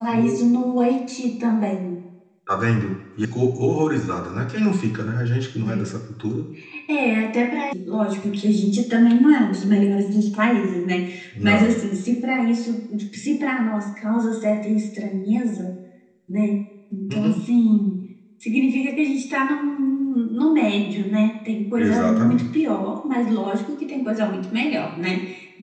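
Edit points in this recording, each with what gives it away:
3.25 sound cut off
7.73 sound cut off

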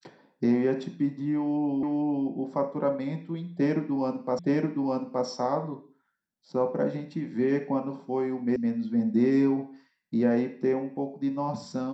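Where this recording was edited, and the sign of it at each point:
1.83 repeat of the last 0.45 s
4.39 repeat of the last 0.87 s
8.56 sound cut off

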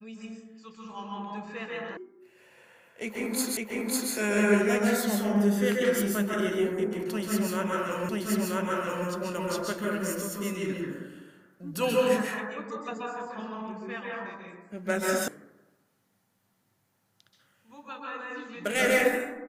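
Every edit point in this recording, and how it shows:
1.97 sound cut off
3.57 repeat of the last 0.55 s
8.09 repeat of the last 0.98 s
15.28 sound cut off

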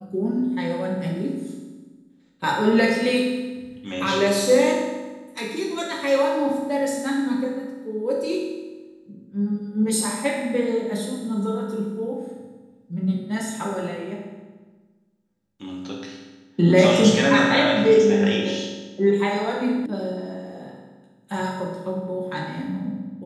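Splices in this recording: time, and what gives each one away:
19.86 sound cut off

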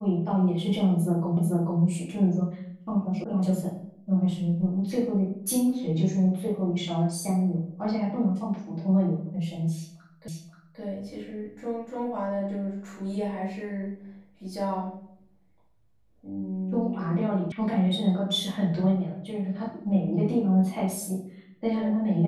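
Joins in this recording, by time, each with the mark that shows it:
1.37 repeat of the last 0.44 s
3.24 sound cut off
10.28 repeat of the last 0.53 s
17.52 sound cut off

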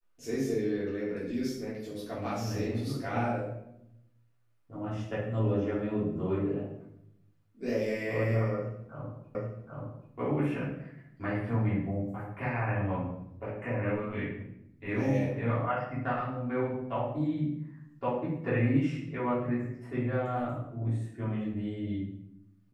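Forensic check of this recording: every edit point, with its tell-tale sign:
9.35 repeat of the last 0.78 s

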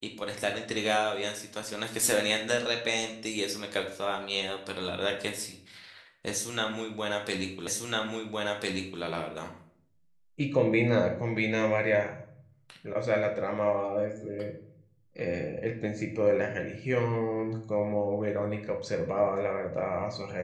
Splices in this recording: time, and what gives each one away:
7.67 repeat of the last 1.35 s

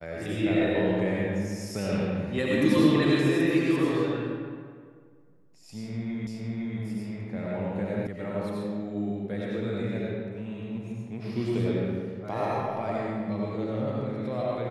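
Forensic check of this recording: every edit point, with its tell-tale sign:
6.27 repeat of the last 0.51 s
8.07 sound cut off

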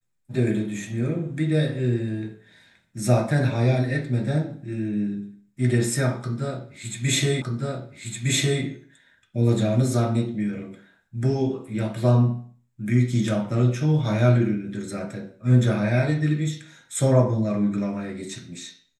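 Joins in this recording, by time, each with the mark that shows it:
7.42 repeat of the last 1.21 s

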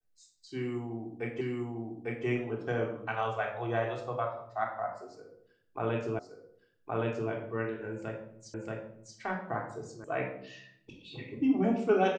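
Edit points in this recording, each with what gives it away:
1.41 repeat of the last 0.85 s
6.19 repeat of the last 1.12 s
8.54 repeat of the last 0.63 s
10.04 sound cut off

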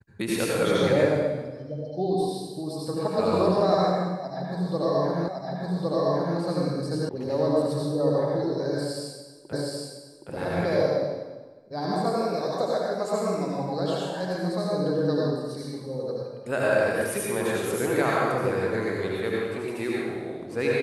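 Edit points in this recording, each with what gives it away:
5.28 repeat of the last 1.11 s
7.09 sound cut off
9.53 repeat of the last 0.77 s

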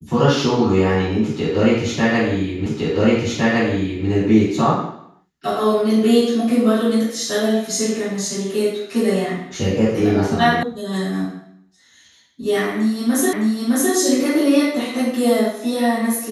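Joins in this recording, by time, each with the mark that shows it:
2.66 repeat of the last 1.41 s
10.63 sound cut off
13.33 repeat of the last 0.61 s

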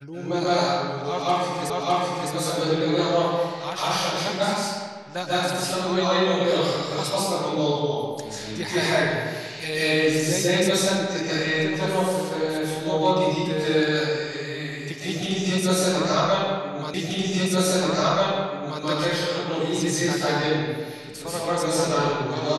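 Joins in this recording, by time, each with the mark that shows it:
1.7 repeat of the last 0.61 s
16.94 repeat of the last 1.88 s

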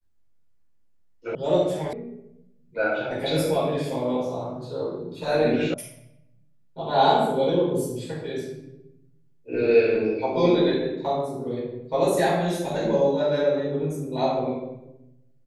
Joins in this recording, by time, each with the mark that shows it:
1.35 sound cut off
1.93 sound cut off
5.74 sound cut off

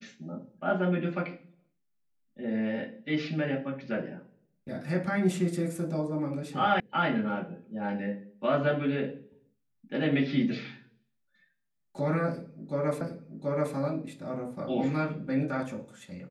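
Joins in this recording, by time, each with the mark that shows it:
6.8 sound cut off
13.01 repeat of the last 0.73 s

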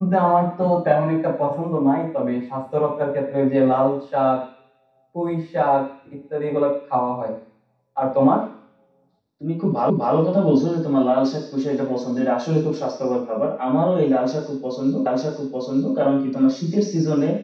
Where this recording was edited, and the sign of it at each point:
9.9 repeat of the last 0.25 s
15.06 repeat of the last 0.9 s

